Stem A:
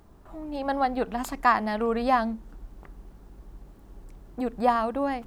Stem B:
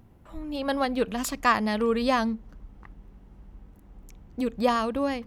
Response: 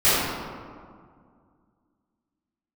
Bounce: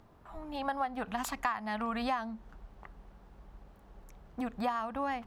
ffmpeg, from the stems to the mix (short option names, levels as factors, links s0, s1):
-filter_complex "[0:a]acrossover=split=390 4600:gain=0.251 1 0.251[s0][s1][s2];[s0][s1][s2]amix=inputs=3:normalize=0,volume=0.841[s3];[1:a]volume=0.422[s4];[s3][s4]amix=inputs=2:normalize=0,acompressor=threshold=0.0316:ratio=6"